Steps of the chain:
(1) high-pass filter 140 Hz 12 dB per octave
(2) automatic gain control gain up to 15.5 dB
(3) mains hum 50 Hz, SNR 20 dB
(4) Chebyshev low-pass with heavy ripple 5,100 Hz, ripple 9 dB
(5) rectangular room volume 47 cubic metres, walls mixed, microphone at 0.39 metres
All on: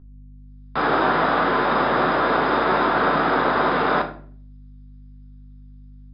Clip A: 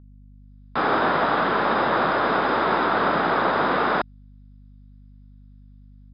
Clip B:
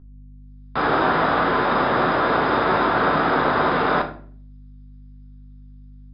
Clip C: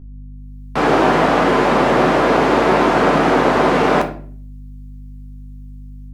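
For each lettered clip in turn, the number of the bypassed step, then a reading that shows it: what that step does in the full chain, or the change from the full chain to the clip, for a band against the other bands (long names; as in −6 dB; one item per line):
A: 5, echo-to-direct ratio −4.0 dB to none audible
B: 1, 125 Hz band +2.5 dB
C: 4, 2 kHz band −5.0 dB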